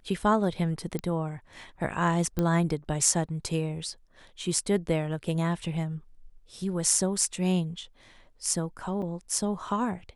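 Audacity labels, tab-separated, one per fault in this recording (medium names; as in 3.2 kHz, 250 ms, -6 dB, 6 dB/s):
0.990000	0.990000	pop -19 dBFS
2.390000	2.390000	pop -15 dBFS
9.020000	9.020000	dropout 4.9 ms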